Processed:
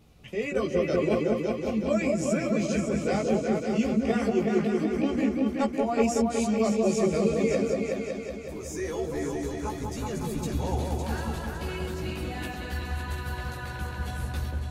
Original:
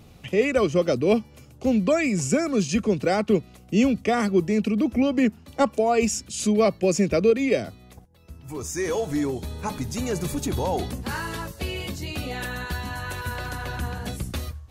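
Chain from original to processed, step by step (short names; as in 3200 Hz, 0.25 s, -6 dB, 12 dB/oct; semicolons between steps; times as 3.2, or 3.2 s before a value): chorus voices 6, 0.69 Hz, delay 16 ms, depth 3 ms; repeats that get brighter 0.186 s, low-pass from 750 Hz, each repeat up 2 oct, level 0 dB; gain -5 dB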